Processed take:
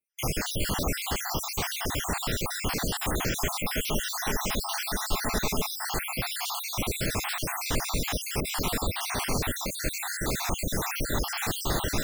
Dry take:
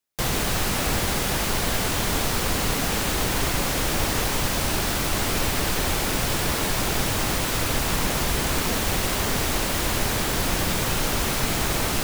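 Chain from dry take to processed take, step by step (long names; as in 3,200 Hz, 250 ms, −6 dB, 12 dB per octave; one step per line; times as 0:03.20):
time-frequency cells dropped at random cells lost 63%
0:03.34–0:05.84: comb filter 4.7 ms, depth 38%
level −1.5 dB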